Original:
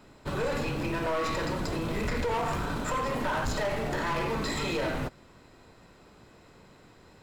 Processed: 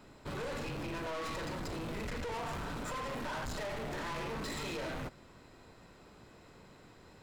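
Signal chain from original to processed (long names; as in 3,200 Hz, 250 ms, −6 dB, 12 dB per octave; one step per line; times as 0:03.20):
soft clipping −35 dBFS, distortion −10 dB
level −2 dB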